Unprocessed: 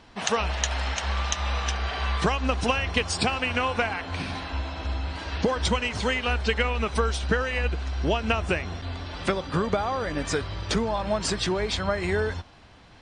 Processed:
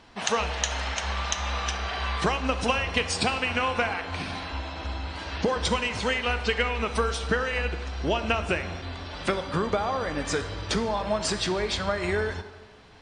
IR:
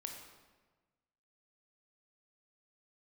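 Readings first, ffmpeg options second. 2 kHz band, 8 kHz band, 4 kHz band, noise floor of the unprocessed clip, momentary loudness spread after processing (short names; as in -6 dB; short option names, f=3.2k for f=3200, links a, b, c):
0.0 dB, 0.0 dB, 0.0 dB, -51 dBFS, 8 LU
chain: -filter_complex "[0:a]asplit=2[a][b];[1:a]atrim=start_sample=2205,lowshelf=f=160:g=-10.5[c];[b][c]afir=irnorm=-1:irlink=0,volume=2.5dB[d];[a][d]amix=inputs=2:normalize=0,volume=-5.5dB"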